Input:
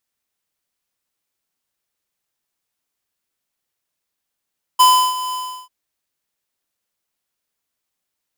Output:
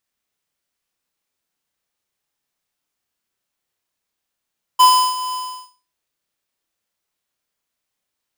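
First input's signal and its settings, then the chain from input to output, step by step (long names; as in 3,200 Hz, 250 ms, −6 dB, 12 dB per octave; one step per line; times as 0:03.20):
note with an ADSR envelope square 1,010 Hz, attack 15 ms, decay 331 ms, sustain −15 dB, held 0.54 s, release 353 ms −9 dBFS
parametric band 16,000 Hz −4 dB 1.2 octaves
on a send: flutter between parallel walls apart 5.3 metres, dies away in 0.33 s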